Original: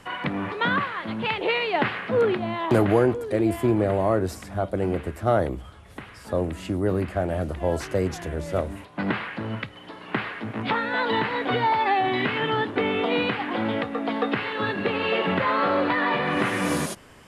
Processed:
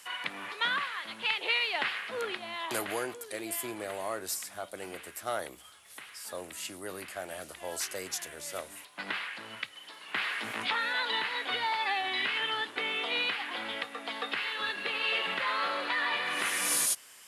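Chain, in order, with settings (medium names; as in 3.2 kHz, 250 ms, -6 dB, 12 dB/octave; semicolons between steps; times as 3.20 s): differentiator; 10.15–10.93 s: level flattener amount 50%; trim +7.5 dB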